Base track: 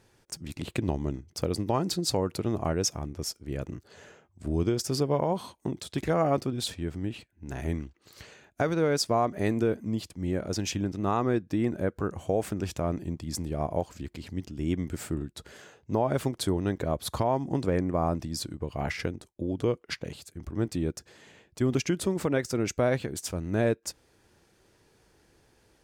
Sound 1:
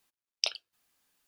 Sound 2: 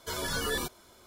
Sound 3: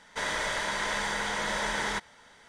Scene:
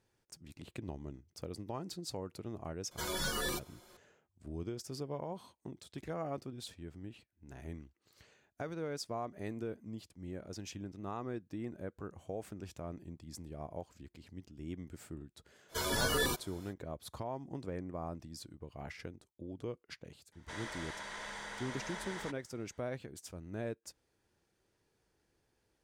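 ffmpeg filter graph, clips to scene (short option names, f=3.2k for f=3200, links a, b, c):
-filter_complex "[2:a]asplit=2[a][b];[0:a]volume=-14.5dB[c];[a]aecho=1:1:5.6:0.54,atrim=end=1.06,asetpts=PTS-STARTPTS,volume=-4.5dB,afade=t=in:d=0.004:c=hsin,afade=t=out:st=1.056:d=0.004:c=hsin,adelay=2910[d];[b]atrim=end=1.06,asetpts=PTS-STARTPTS,volume=-0.5dB,afade=t=in:d=0.05,afade=t=out:st=1.01:d=0.05,adelay=15680[e];[3:a]atrim=end=2.48,asetpts=PTS-STARTPTS,volume=-14dB,afade=t=in:d=0.004:c=hsin,afade=t=out:st=2.476:d=0.004:c=hsin,adelay=20320[f];[c][d][e][f]amix=inputs=4:normalize=0"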